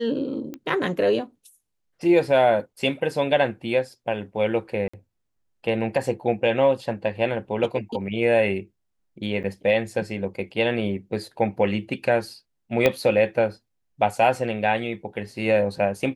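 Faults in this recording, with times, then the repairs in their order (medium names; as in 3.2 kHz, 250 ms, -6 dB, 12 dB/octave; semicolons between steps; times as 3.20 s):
0.54 s: pop -21 dBFS
4.88–4.93 s: dropout 55 ms
9.43–9.44 s: dropout 8.7 ms
12.86 s: pop -6 dBFS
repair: de-click; interpolate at 4.88 s, 55 ms; interpolate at 9.43 s, 8.7 ms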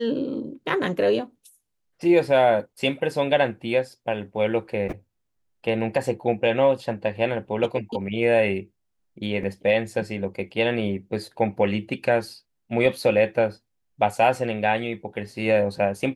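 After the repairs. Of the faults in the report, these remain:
12.86 s: pop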